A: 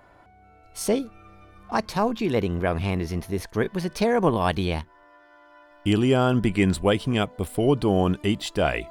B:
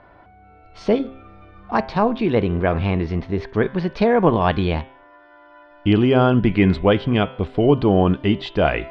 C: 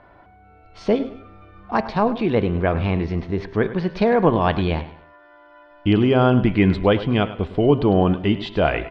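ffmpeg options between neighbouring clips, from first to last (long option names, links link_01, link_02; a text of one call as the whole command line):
ffmpeg -i in.wav -af "lowpass=frequency=4400:width=0.5412,lowpass=frequency=4400:width=1.3066,aemphasis=mode=reproduction:type=50fm,bandreject=frequency=132.3:width_type=h:width=4,bandreject=frequency=264.6:width_type=h:width=4,bandreject=frequency=396.9:width_type=h:width=4,bandreject=frequency=529.2:width_type=h:width=4,bandreject=frequency=661.5:width_type=h:width=4,bandreject=frequency=793.8:width_type=h:width=4,bandreject=frequency=926.1:width_type=h:width=4,bandreject=frequency=1058.4:width_type=h:width=4,bandreject=frequency=1190.7:width_type=h:width=4,bandreject=frequency=1323:width_type=h:width=4,bandreject=frequency=1455.3:width_type=h:width=4,bandreject=frequency=1587.6:width_type=h:width=4,bandreject=frequency=1719.9:width_type=h:width=4,bandreject=frequency=1852.2:width_type=h:width=4,bandreject=frequency=1984.5:width_type=h:width=4,bandreject=frequency=2116.8:width_type=h:width=4,bandreject=frequency=2249.1:width_type=h:width=4,bandreject=frequency=2381.4:width_type=h:width=4,bandreject=frequency=2513.7:width_type=h:width=4,bandreject=frequency=2646:width_type=h:width=4,bandreject=frequency=2778.3:width_type=h:width=4,bandreject=frequency=2910.6:width_type=h:width=4,bandreject=frequency=3042.9:width_type=h:width=4,bandreject=frequency=3175.2:width_type=h:width=4,bandreject=frequency=3307.5:width_type=h:width=4,bandreject=frequency=3439.8:width_type=h:width=4,bandreject=frequency=3572.1:width_type=h:width=4,bandreject=frequency=3704.4:width_type=h:width=4,volume=5dB" out.wav
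ffmpeg -i in.wav -af "aecho=1:1:103|206|309:0.178|0.0605|0.0206,volume=-1dB" out.wav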